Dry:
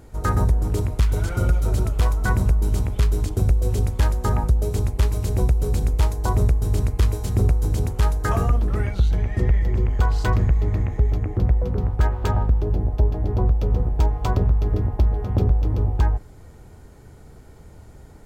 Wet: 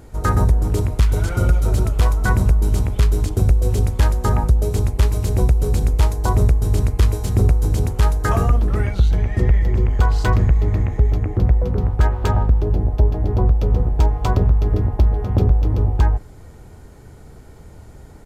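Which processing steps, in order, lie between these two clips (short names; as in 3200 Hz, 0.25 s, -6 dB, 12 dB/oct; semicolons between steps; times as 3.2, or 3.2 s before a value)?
downsampling 32000 Hz; gain +3.5 dB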